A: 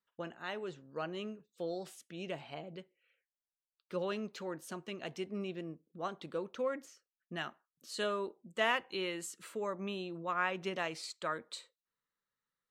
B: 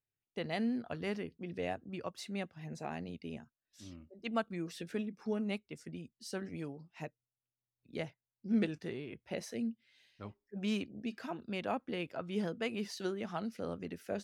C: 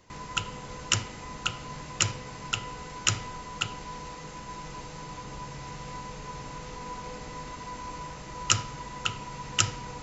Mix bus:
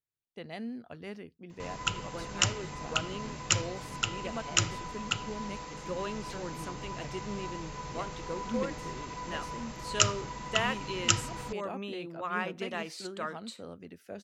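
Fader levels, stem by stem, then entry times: 0.0, -5.0, -1.0 dB; 1.95, 0.00, 1.50 s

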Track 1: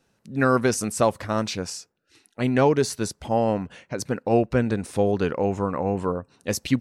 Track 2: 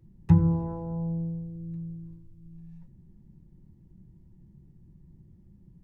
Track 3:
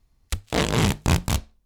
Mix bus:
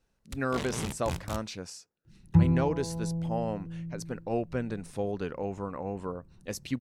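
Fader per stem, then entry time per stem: -10.5, -2.0, -14.5 dB; 0.00, 2.05, 0.00 s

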